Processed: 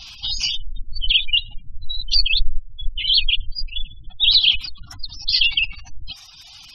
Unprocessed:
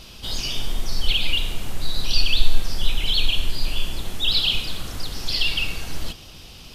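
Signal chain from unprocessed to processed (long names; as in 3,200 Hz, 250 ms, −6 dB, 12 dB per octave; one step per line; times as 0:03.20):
gate on every frequency bin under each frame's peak −25 dB strong
elliptic band-stop filter 300–730 Hz
reverb reduction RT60 1.9 s
drawn EQ curve 110 Hz 0 dB, 220 Hz −10 dB, 580 Hz +4 dB, 4,100 Hz +10 dB
level −1.5 dB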